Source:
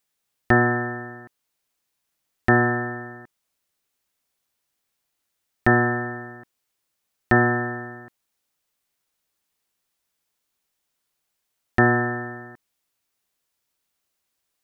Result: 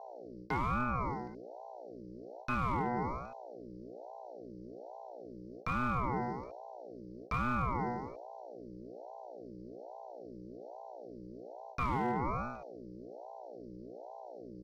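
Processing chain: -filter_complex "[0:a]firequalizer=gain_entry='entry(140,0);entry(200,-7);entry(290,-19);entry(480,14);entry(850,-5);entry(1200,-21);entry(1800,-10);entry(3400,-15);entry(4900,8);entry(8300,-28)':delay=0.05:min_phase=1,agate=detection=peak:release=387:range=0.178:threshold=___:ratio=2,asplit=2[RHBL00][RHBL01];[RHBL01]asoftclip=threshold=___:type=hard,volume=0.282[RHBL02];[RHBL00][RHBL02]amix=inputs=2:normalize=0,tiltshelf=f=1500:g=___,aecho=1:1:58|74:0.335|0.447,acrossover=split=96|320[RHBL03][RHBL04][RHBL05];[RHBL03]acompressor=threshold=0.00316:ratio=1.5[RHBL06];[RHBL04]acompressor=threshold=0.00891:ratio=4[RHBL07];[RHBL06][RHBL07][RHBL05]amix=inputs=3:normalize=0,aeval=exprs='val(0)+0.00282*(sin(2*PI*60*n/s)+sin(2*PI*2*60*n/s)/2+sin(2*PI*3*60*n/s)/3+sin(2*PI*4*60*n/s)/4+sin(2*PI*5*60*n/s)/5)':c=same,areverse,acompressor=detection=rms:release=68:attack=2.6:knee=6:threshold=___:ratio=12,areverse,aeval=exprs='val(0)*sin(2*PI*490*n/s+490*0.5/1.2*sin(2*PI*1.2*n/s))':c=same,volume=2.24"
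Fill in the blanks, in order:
0.0251, 0.106, -9, 0.0224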